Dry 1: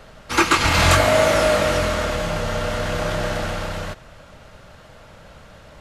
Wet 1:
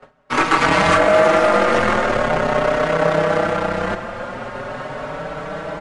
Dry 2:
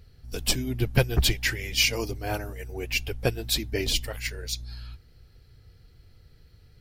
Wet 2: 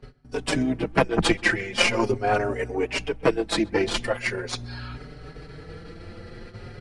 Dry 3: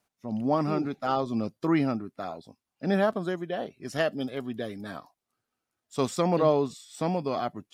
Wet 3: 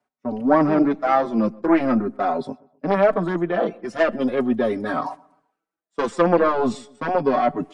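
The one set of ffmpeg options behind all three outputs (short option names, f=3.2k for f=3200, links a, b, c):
-filter_complex "[0:a]aeval=exprs='0.668*(cos(1*acos(clip(val(0)/0.668,-1,1)))-cos(1*PI/2))+0.075*(cos(3*acos(clip(val(0)/0.668,-1,1)))-cos(3*PI/2))+0.168*(cos(4*acos(clip(val(0)/0.668,-1,1)))-cos(4*PI/2))+0.0133*(cos(5*acos(clip(val(0)/0.668,-1,1)))-cos(5*PI/2))+0.0188*(cos(7*acos(clip(val(0)/0.668,-1,1)))-cos(7*PI/2))':c=same,areverse,acompressor=mode=upward:threshold=-23dB:ratio=2.5,areverse,equalizer=f=69:w=3.4:g=-12,agate=range=-19dB:threshold=-43dB:ratio=16:detection=peak,acrossover=split=170 2100:gain=0.224 1 0.2[a][b][c];[a][b][c]amix=inputs=3:normalize=0,aresample=22050,aresample=44100,asplit=2[d][e];[e]adelay=129,lowpass=f=2k:p=1,volume=-23.5dB,asplit=2[f][g];[g]adelay=129,lowpass=f=2k:p=1,volume=0.39,asplit=2[h][i];[i]adelay=129,lowpass=f=2k:p=1,volume=0.39[j];[f][h][j]amix=inputs=3:normalize=0[k];[d][k]amix=inputs=2:normalize=0,alimiter=level_in=14.5dB:limit=-1dB:release=50:level=0:latency=1,asplit=2[l][m];[m]adelay=5,afreqshift=0.42[n];[l][n]amix=inputs=2:normalize=1"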